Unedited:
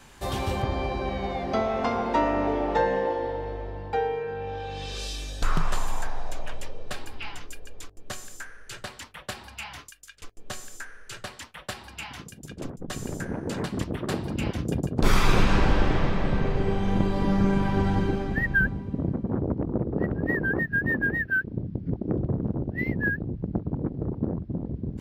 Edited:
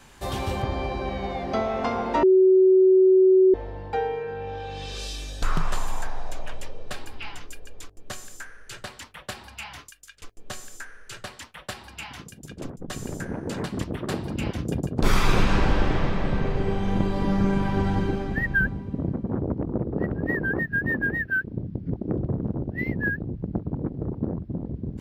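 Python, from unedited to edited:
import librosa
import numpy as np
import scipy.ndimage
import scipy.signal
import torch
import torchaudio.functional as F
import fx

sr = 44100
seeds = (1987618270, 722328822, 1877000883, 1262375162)

y = fx.edit(x, sr, fx.bleep(start_s=2.23, length_s=1.31, hz=376.0, db=-12.5), tone=tone)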